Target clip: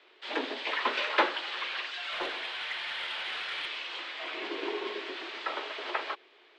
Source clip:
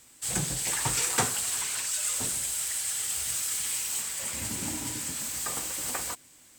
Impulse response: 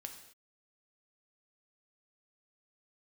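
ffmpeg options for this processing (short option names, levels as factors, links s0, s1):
-filter_complex "[0:a]highpass=f=220:t=q:w=0.5412,highpass=f=220:t=q:w=1.307,lowpass=f=3600:t=q:w=0.5176,lowpass=f=3600:t=q:w=0.7071,lowpass=f=3600:t=q:w=1.932,afreqshift=110,asettb=1/sr,asplit=3[s0][s1][s2];[s0]atrim=end=2.124[s3];[s1]atrim=start=2.12:end=3.66,asetpts=PTS-STARTPTS,afade=t=in:d=0.004:c=qsin,afade=t=out:st=1.536:d=0.004:c=qsin,asplit=2[s4][s5];[s5]highpass=f=720:p=1,volume=3.55,asoftclip=type=tanh:threshold=0.0447[s6];[s4][s6]amix=inputs=2:normalize=0,lowpass=f=2900:p=1,volume=0.501[s7];[s2]atrim=start=3.656[s8];[s3][s7]acrossfade=d=0.004:c1=hsin:c2=qsin[s9];[s9][s8]acrossfade=d=0.004:c1=qsin:c2=hsin,volume=1.68"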